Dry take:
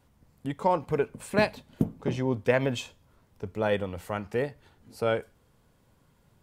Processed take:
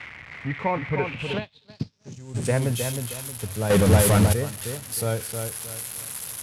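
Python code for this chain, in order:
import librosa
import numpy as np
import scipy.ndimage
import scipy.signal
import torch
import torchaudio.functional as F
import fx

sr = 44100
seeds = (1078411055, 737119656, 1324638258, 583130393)

y = x + 0.5 * 10.0 ** (-18.0 / 20.0) * np.diff(np.sign(x), prepend=np.sign(x[:1]))
y = fx.echo_filtered(y, sr, ms=313, feedback_pct=32, hz=4200.0, wet_db=-6)
y = fx.leveller(y, sr, passes=5, at=(3.7, 4.33))
y = fx.high_shelf(y, sr, hz=6100.0, db=-11.5)
y = fx.filter_sweep_lowpass(y, sr, from_hz=2100.0, to_hz=11000.0, start_s=0.96, end_s=2.68, q=6.3)
y = fx.peak_eq(y, sr, hz=100.0, db=14.5, octaves=1.5)
y = fx.hum_notches(y, sr, base_hz=50, count=2)
y = fx.upward_expand(y, sr, threshold_db=-32.0, expansion=2.5, at=(1.37, 2.34), fade=0.02)
y = y * librosa.db_to_amplitude(-3.0)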